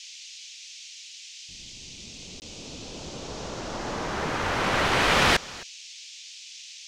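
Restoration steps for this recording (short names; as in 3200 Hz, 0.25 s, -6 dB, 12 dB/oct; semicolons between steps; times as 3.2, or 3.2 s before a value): clip repair -11 dBFS; interpolate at 2.4, 19 ms; noise print and reduce 28 dB; inverse comb 0.264 s -21.5 dB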